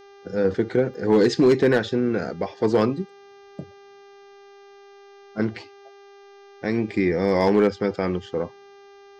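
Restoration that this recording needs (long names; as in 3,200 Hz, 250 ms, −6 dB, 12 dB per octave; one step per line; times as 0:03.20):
clipped peaks rebuilt −10.5 dBFS
hum removal 399.2 Hz, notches 16
repair the gap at 0:00.94, 1.4 ms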